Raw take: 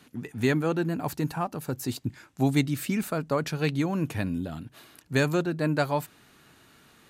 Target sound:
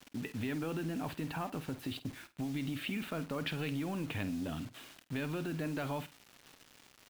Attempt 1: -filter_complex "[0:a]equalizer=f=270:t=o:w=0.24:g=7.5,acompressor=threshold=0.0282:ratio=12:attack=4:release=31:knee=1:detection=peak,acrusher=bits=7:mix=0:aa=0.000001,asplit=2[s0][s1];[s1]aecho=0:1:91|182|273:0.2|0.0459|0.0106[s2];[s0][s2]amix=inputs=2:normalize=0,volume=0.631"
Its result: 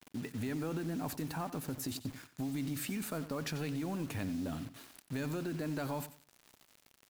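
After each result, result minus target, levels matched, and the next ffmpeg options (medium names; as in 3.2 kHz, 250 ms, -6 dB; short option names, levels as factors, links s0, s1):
echo 41 ms late; 8 kHz band +7.0 dB
-filter_complex "[0:a]equalizer=f=270:t=o:w=0.24:g=7.5,acompressor=threshold=0.0282:ratio=12:attack=4:release=31:knee=1:detection=peak,acrusher=bits=7:mix=0:aa=0.000001,asplit=2[s0][s1];[s1]aecho=0:1:50|100|150:0.2|0.0459|0.0106[s2];[s0][s2]amix=inputs=2:normalize=0,volume=0.631"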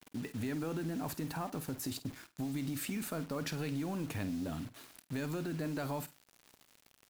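8 kHz band +7.0 dB
-filter_complex "[0:a]equalizer=f=270:t=o:w=0.24:g=7.5,acompressor=threshold=0.0282:ratio=12:attack=4:release=31:knee=1:detection=peak,highshelf=f=4600:t=q:w=3:g=-14,acrusher=bits=7:mix=0:aa=0.000001,asplit=2[s0][s1];[s1]aecho=0:1:50|100|150:0.2|0.0459|0.0106[s2];[s0][s2]amix=inputs=2:normalize=0,volume=0.631"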